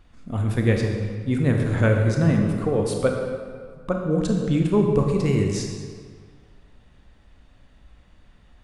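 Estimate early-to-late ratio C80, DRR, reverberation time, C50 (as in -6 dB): 4.0 dB, 1.5 dB, 1.9 s, 3.0 dB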